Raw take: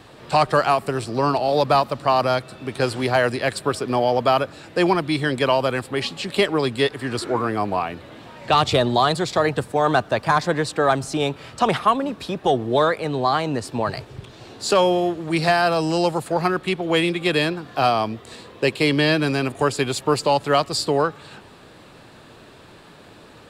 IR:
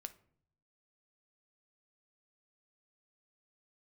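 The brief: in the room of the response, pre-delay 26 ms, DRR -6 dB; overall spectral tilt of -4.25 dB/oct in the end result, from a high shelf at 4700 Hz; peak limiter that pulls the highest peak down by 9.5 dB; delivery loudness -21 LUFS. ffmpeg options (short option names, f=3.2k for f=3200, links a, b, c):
-filter_complex "[0:a]highshelf=f=4.7k:g=-4,alimiter=limit=-14.5dB:level=0:latency=1,asplit=2[a][b];[1:a]atrim=start_sample=2205,adelay=26[c];[b][c]afir=irnorm=-1:irlink=0,volume=10.5dB[d];[a][d]amix=inputs=2:normalize=0,volume=-3dB"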